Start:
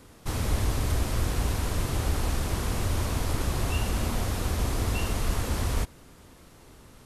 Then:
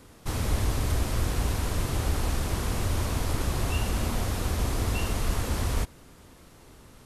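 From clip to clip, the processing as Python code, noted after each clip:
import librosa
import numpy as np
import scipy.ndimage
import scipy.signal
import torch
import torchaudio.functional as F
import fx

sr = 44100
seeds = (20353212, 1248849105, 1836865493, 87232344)

y = x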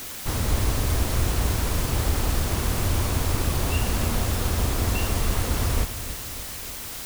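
y = fx.dmg_noise_colour(x, sr, seeds[0], colour='white', level_db=-39.0)
y = fx.echo_feedback(y, sr, ms=295, feedback_pct=58, wet_db=-13.5)
y = y * 10.0 ** (3.0 / 20.0)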